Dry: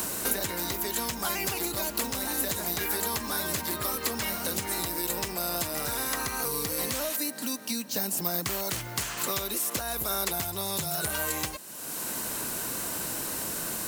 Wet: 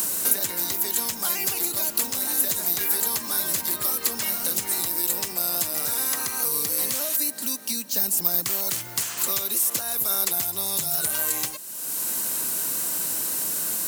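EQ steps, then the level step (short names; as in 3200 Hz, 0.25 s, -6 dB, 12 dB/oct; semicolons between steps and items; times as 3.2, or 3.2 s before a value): HPF 110 Hz 12 dB/oct; high shelf 4500 Hz +11.5 dB; -2.5 dB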